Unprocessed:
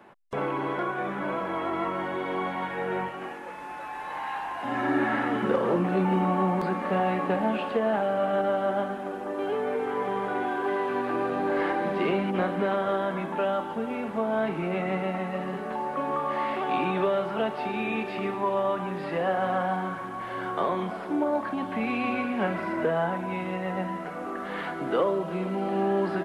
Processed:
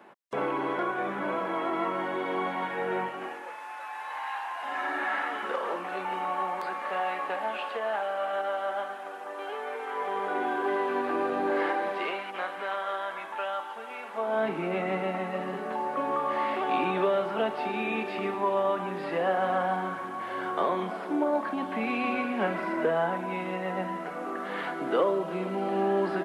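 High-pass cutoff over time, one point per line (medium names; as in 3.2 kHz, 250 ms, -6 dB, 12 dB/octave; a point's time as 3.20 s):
3.19 s 210 Hz
3.65 s 760 Hz
9.87 s 760 Hz
10.49 s 250 Hz
11.48 s 250 Hz
12.24 s 900 Hz
14.06 s 900 Hz
14.47 s 220 Hz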